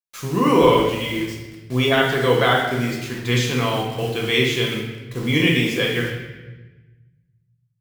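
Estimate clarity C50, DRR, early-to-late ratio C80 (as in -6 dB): 2.5 dB, -2.0 dB, 5.0 dB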